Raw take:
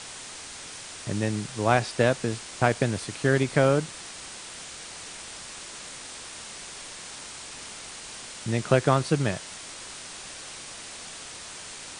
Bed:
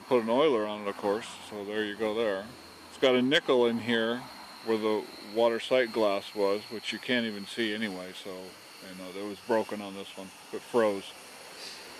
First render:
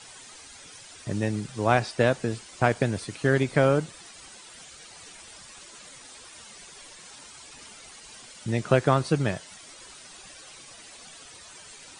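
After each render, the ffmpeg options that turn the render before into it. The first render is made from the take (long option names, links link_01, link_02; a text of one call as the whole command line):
ffmpeg -i in.wav -af "afftdn=noise_reduction=11:noise_floor=-41" out.wav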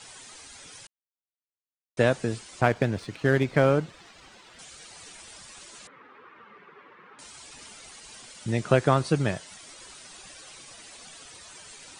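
ffmpeg -i in.wav -filter_complex "[0:a]asettb=1/sr,asplit=3[link_01][link_02][link_03];[link_01]atrim=end=2.614[link_04];[link_02]atrim=start=2.61:end=4.59,asetpts=PTS-STARTPTS,afade=type=in:duration=0.004:curve=qsin,afade=type=out:start_time=1.976:duration=0.004:curve=qsin,adynamicsmooth=sensitivity=6.5:basefreq=3800[link_05];[link_03]atrim=start=4.586[link_06];[link_04][link_05]acrossfade=duration=0.004:curve1=hsin:curve2=qsin[link_07];[link_07][link_06]acrossfade=duration=0.004:curve1=qsin:curve2=hsin,asettb=1/sr,asplit=3[link_08][link_09][link_10];[link_08]atrim=end=5.874[link_11];[link_09]atrim=start=5.87:end=7.19,asetpts=PTS-STARTPTS,afade=type=in:duration=0.004:curve=qsin,afade=type=out:start_time=1.316:duration=0.004:curve=qsin,highpass=frequency=120:width=0.5412,highpass=frequency=120:width=1.3066,equalizer=frequency=130:width_type=q:width=4:gain=-7,equalizer=frequency=430:width_type=q:width=4:gain=7,equalizer=frequency=660:width_type=q:width=4:gain=-9,equalizer=frequency=1200:width_type=q:width=4:gain=8,lowpass=frequency=2100:width=0.5412,lowpass=frequency=2100:width=1.3066[link_12];[link_10]atrim=start=7.186[link_13];[link_11][link_12]acrossfade=duration=0.004:curve1=hsin:curve2=qsin[link_14];[link_14][link_13]acrossfade=duration=0.004:curve1=qsin:curve2=hsin,asplit=3[link_15][link_16][link_17];[link_15]atrim=end=0.87,asetpts=PTS-STARTPTS,afade=type=out:start_time=0.866:duration=0.004:curve=hsin[link_18];[link_16]atrim=start=0.87:end=1.97,asetpts=PTS-STARTPTS,volume=0[link_19];[link_17]atrim=start=1.97,asetpts=PTS-STARTPTS,afade=type=in:duration=0.004:curve=hsin[link_20];[link_18][link_19][link_20]concat=n=3:v=0:a=1" out.wav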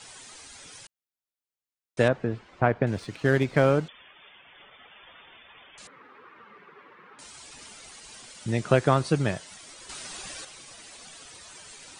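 ffmpeg -i in.wav -filter_complex "[0:a]asettb=1/sr,asplit=3[link_01][link_02][link_03];[link_01]atrim=end=2.084[link_04];[link_02]atrim=start=2.08:end=2.87,asetpts=PTS-STARTPTS,afade=type=in:duration=0.004:curve=qsin,afade=type=out:start_time=0.786:duration=0.004:curve=qsin,lowpass=1900[link_05];[link_03]atrim=start=2.866[link_06];[link_04][link_05]acrossfade=duration=0.004:curve1=hsin:curve2=qsin[link_07];[link_07][link_06]acrossfade=duration=0.004:curve1=qsin:curve2=hsin,asettb=1/sr,asplit=3[link_08][link_09][link_10];[link_08]atrim=end=3.884[link_11];[link_09]atrim=start=3.88:end=5.78,asetpts=PTS-STARTPTS,afade=type=in:duration=0.004:curve=qsin,afade=type=out:start_time=1.896:duration=0.004:curve=qsin,lowpass=frequency=3100:width_type=q:width=0.5098,lowpass=frequency=3100:width_type=q:width=0.6013,lowpass=frequency=3100:width_type=q:width=0.9,lowpass=frequency=3100:width_type=q:width=2.563,afreqshift=-3600[link_12];[link_10]atrim=start=5.776[link_13];[link_11][link_12]acrossfade=duration=0.004:curve1=hsin:curve2=qsin[link_14];[link_14][link_13]acrossfade=duration=0.004:curve1=qsin:curve2=hsin,asettb=1/sr,asplit=3[link_15][link_16][link_17];[link_15]atrim=end=9.894[link_18];[link_16]atrim=start=9.89:end=10.45,asetpts=PTS-STARTPTS,afade=type=in:duration=0.004:curve=qsin,afade=type=out:start_time=0.556:duration=0.004:curve=qsin,acontrast=78[link_19];[link_17]atrim=start=10.446[link_20];[link_18][link_19]acrossfade=duration=0.004:curve1=hsin:curve2=qsin[link_21];[link_21][link_20]acrossfade=duration=0.004:curve1=qsin:curve2=hsin" out.wav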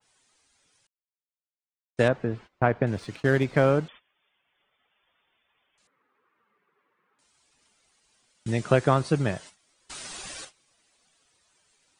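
ffmpeg -i in.wav -af "agate=range=-21dB:threshold=-42dB:ratio=16:detection=peak,adynamicequalizer=threshold=0.01:dfrequency=2200:dqfactor=0.7:tfrequency=2200:tqfactor=0.7:attack=5:release=100:ratio=0.375:range=2:mode=cutabove:tftype=highshelf" out.wav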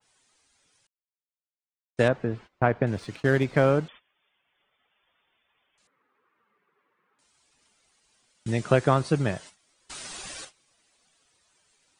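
ffmpeg -i in.wav -af anull out.wav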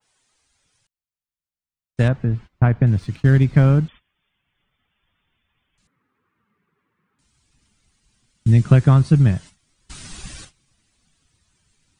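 ffmpeg -i in.wav -af "asubboost=boost=10.5:cutoff=170" out.wav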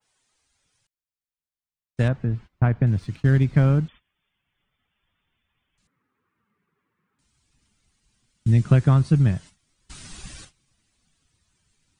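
ffmpeg -i in.wav -af "volume=-4dB" out.wav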